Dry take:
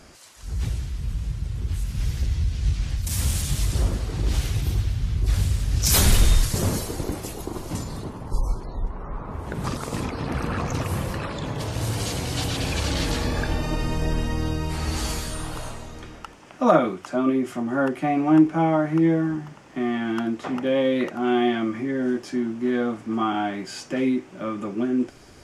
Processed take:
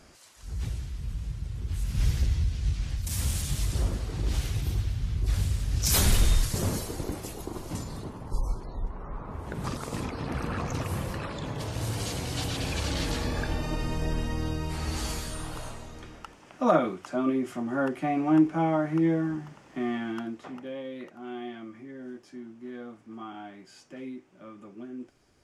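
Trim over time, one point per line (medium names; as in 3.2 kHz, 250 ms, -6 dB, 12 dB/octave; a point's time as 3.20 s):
1.66 s -6 dB
2.05 s +1 dB
2.63 s -5 dB
19.92 s -5 dB
20.83 s -17 dB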